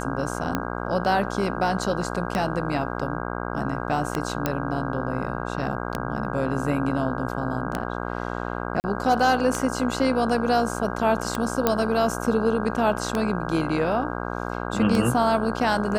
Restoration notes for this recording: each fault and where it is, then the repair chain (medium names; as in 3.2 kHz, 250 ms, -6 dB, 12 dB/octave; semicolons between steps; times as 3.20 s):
buzz 60 Hz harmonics 27 -30 dBFS
tick 33 1/3 rpm -10 dBFS
4.46 s: pop -8 dBFS
8.80–8.84 s: dropout 39 ms
11.67 s: pop -5 dBFS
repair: de-click; de-hum 60 Hz, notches 27; interpolate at 8.80 s, 39 ms